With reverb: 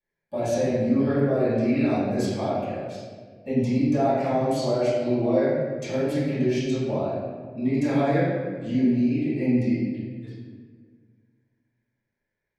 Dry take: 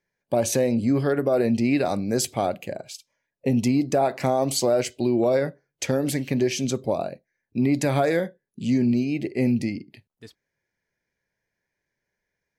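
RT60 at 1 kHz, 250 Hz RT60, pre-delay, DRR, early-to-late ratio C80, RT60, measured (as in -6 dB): 1.4 s, 2.3 s, 3 ms, -16.5 dB, 0.5 dB, 1.7 s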